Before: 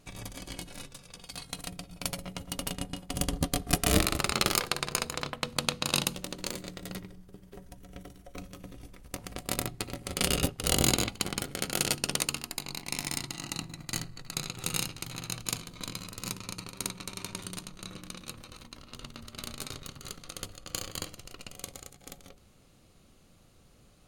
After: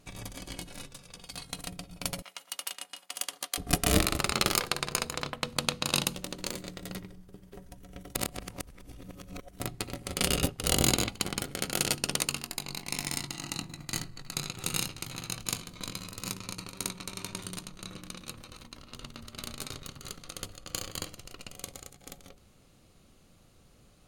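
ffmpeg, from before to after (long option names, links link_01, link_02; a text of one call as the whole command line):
ffmpeg -i in.wav -filter_complex "[0:a]asettb=1/sr,asplit=3[link_01][link_02][link_03];[link_01]atrim=end=2.224[link_04];[link_02]atrim=start=2.22:end=3.58,asetpts=PTS-STARTPTS,afade=type=in:duration=0.004:curve=qsin,afade=type=out:start_time=1.356:duration=0.004:curve=qsin,highpass=1100[link_05];[link_03]atrim=start=3.576[link_06];[link_04][link_05]acrossfade=duration=0.004:curve1=hsin:curve2=qsin[link_07];[link_07][link_06]acrossfade=duration=0.004:curve1=qsin:curve2=hsin,asettb=1/sr,asplit=3[link_08][link_09][link_10];[link_08]atrim=end=12.254[link_11];[link_09]atrim=start=12.25:end=17.56,asetpts=PTS-STARTPTS,afade=type=in:duration=0.004:curve=qsin,afade=type=out:start_time=5.306:duration=0.004:curve=qsin,asplit=2[link_12][link_13];[link_13]adelay=21,volume=-13.5dB[link_14];[link_12][link_14]amix=inputs=2:normalize=0,atrim=end_sample=234171[link_15];[link_10]atrim=start=17.556[link_16];[link_11][link_15]acrossfade=duration=0.004:curve1=hsin:curve2=qsin[link_17];[link_17][link_16]acrossfade=duration=0.004:curve1=qsin:curve2=hsin,asplit=3[link_18][link_19][link_20];[link_18]atrim=end=8.152[link_21];[link_19]atrim=start=8.148:end=9.602,asetpts=PTS-STARTPTS,areverse[link_22];[link_20]atrim=start=9.598[link_23];[link_21][link_22]acrossfade=duration=0.004:curve1=hsin:curve2=hsin[link_24];[link_24][link_23]acrossfade=duration=0.004:curve1=hsin:curve2=hsin" out.wav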